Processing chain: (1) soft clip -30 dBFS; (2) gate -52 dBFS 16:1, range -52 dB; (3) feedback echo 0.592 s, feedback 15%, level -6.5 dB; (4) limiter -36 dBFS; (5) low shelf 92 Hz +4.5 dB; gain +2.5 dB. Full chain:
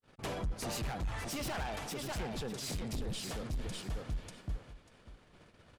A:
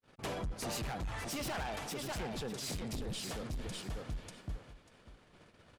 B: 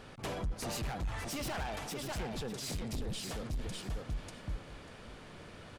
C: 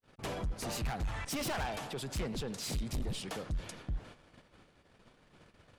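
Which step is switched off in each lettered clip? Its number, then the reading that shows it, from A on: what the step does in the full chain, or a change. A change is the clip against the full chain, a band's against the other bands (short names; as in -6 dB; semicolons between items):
5, 125 Hz band -2.0 dB; 2, momentary loudness spread change +4 LU; 3, momentary loudness spread change -2 LU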